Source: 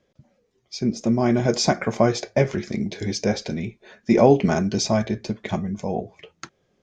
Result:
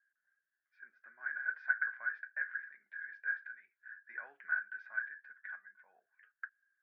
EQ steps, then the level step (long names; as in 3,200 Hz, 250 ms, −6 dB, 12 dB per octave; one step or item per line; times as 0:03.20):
flat-topped band-pass 1,600 Hz, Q 7.7
high-frequency loss of the air 180 metres
+6.0 dB